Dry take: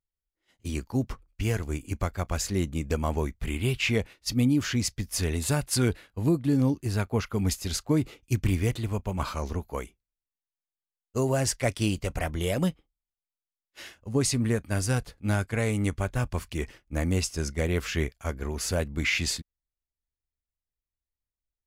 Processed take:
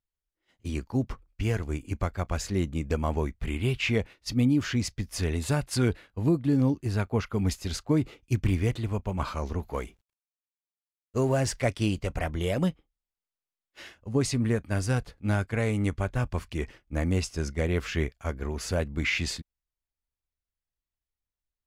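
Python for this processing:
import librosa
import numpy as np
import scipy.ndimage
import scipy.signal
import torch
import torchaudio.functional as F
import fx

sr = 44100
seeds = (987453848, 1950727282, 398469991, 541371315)

y = fx.law_mismatch(x, sr, coded='mu', at=(9.58, 11.66), fade=0.02)
y = fx.lowpass(y, sr, hz=3900.0, slope=6)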